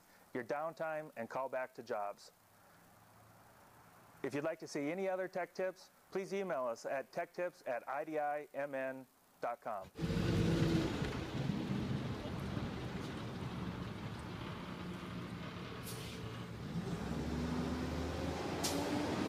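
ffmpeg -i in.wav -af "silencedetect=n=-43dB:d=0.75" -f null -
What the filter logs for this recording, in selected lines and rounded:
silence_start: 2.11
silence_end: 4.24 | silence_duration: 2.13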